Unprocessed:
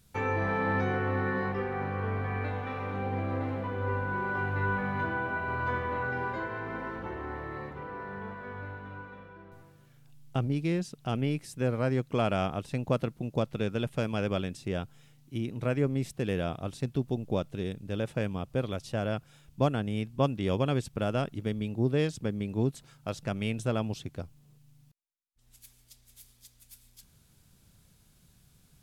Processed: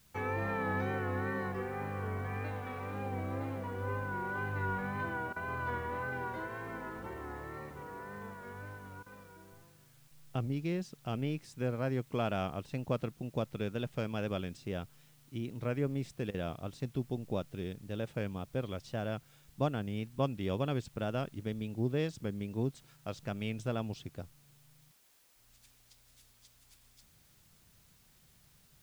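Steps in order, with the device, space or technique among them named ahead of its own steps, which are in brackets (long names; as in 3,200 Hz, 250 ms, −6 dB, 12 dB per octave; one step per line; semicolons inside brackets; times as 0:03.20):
worn cassette (low-pass filter 7,100 Hz; tape wow and flutter; tape dropouts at 0:05.33/0:09.03/0:10.08/0:16.31, 31 ms −16 dB; white noise bed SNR 29 dB)
level −5.5 dB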